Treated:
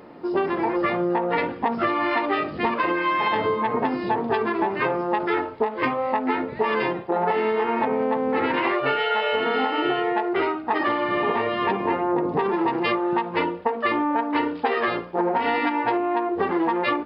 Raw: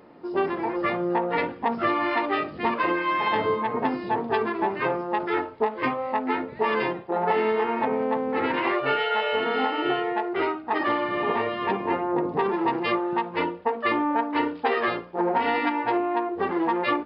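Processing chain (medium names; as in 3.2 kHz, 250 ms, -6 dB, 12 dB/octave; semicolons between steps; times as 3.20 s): compression, threshold -25 dBFS, peak gain reduction 7 dB; trim +6 dB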